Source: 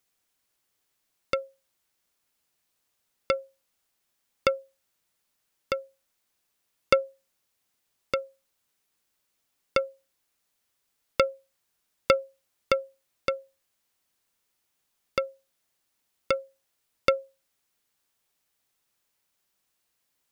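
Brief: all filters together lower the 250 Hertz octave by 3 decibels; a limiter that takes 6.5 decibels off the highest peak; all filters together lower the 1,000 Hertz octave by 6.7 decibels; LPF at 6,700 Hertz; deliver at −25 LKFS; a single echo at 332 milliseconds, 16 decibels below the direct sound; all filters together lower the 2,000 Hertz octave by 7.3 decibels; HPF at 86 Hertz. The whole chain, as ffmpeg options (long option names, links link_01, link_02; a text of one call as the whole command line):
ffmpeg -i in.wav -af "highpass=86,lowpass=6700,equalizer=frequency=250:width_type=o:gain=-3.5,equalizer=frequency=1000:width_type=o:gain=-5.5,equalizer=frequency=2000:width_type=o:gain=-8,alimiter=limit=-14dB:level=0:latency=1,aecho=1:1:332:0.158,volume=10.5dB" out.wav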